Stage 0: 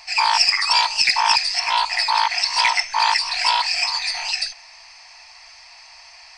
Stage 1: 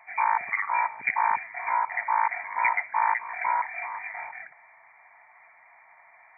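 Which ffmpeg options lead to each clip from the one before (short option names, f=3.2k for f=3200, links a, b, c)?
-af "afftfilt=real='re*between(b*sr/4096,110,2400)':imag='im*between(b*sr/4096,110,2400)':win_size=4096:overlap=0.75,volume=-4.5dB"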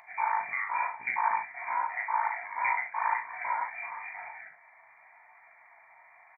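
-af "flanger=delay=17:depth=5.7:speed=0.92,aecho=1:1:39|68:0.531|0.316,acompressor=mode=upward:threshold=-48dB:ratio=2.5,volume=-3dB"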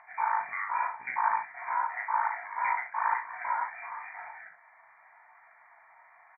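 -af "lowpass=f=1.5k:t=q:w=2.2,volume=-3dB"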